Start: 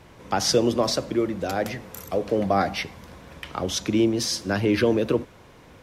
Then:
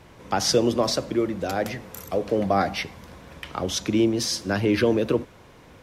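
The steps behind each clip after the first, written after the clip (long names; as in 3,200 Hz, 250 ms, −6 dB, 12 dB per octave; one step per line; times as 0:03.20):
no processing that can be heard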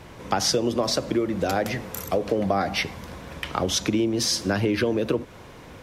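downward compressor 6 to 1, threshold −25 dBFS, peak gain reduction 10.5 dB
level +5.5 dB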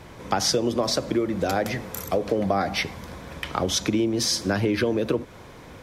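notch filter 2,800 Hz, Q 19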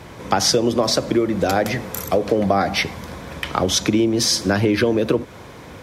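high-pass filter 53 Hz
level +5.5 dB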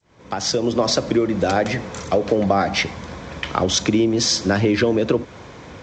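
fade in at the beginning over 0.82 s
G.722 64 kbit/s 16,000 Hz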